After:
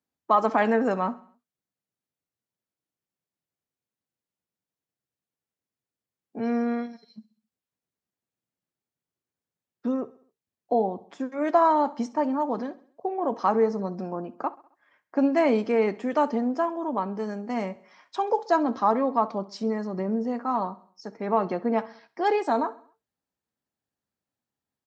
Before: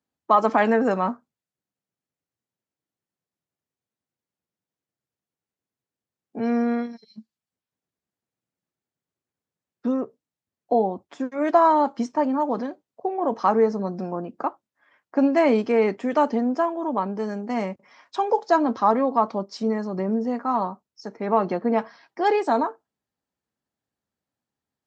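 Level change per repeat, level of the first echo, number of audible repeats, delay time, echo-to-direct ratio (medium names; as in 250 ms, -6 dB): -6.0 dB, -20.0 dB, 3, 66 ms, -19.0 dB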